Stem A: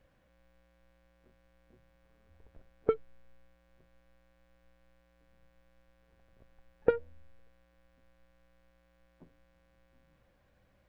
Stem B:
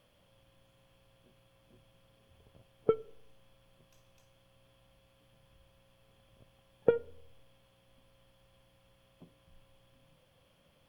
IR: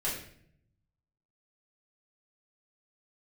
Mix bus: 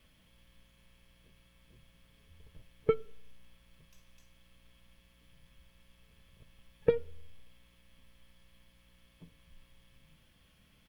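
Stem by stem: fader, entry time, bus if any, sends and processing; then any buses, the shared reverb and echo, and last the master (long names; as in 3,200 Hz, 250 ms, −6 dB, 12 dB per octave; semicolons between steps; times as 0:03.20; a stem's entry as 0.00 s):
+1.0 dB, 0.00 s, no send, drawn EQ curve 280 Hz 0 dB, 1,000 Hz −20 dB, 2,000 Hz +3 dB
+2.0 dB, 1.4 ms, no send, parametric band 570 Hz −10.5 dB 1.7 octaves; comb filter 4.6 ms, depth 53%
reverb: not used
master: no processing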